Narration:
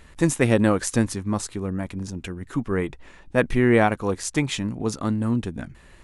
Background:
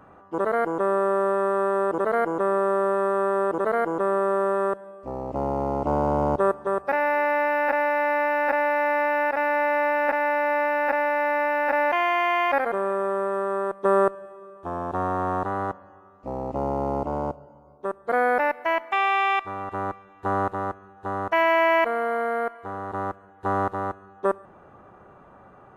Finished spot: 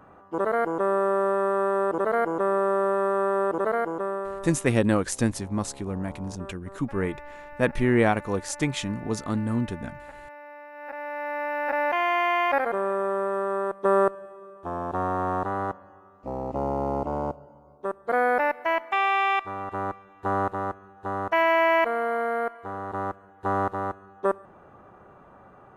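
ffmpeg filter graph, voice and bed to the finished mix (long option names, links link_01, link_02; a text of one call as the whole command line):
ffmpeg -i stem1.wav -i stem2.wav -filter_complex "[0:a]adelay=4250,volume=-3dB[link_01];[1:a]volume=19dB,afade=type=out:start_time=3.64:duration=0.91:silence=0.1,afade=type=in:start_time=10.72:duration=1.43:silence=0.1[link_02];[link_01][link_02]amix=inputs=2:normalize=0" out.wav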